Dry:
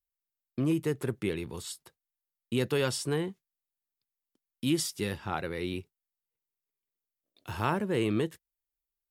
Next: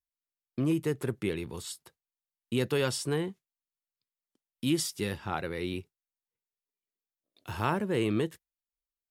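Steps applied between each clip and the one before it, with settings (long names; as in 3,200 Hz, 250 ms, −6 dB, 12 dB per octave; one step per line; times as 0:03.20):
noise reduction from a noise print of the clip's start 9 dB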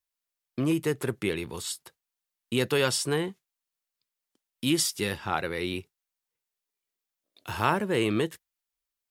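low-shelf EQ 460 Hz −6.5 dB
level +6.5 dB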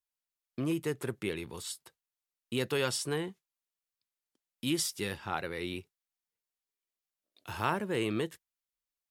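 tape wow and flutter 22 cents
level −6 dB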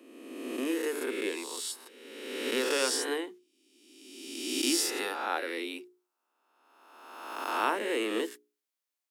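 peak hold with a rise ahead of every peak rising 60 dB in 1.51 s
Butterworth high-pass 240 Hz 72 dB per octave
mains-hum notches 60/120/180/240/300/360/420 Hz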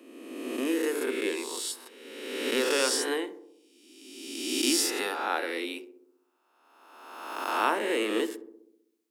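feedback echo with a low-pass in the loop 64 ms, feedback 68%, low-pass 1,100 Hz, level −12 dB
level +2.5 dB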